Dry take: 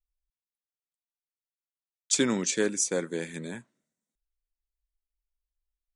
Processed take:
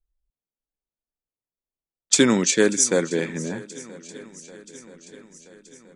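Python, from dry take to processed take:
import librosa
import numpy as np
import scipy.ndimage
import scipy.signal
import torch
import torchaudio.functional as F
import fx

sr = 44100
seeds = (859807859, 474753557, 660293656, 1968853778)

y = fx.env_lowpass(x, sr, base_hz=580.0, full_db=-23.0)
y = fx.echo_swing(y, sr, ms=978, ratio=1.5, feedback_pct=56, wet_db=-20)
y = y * librosa.db_to_amplitude(8.5)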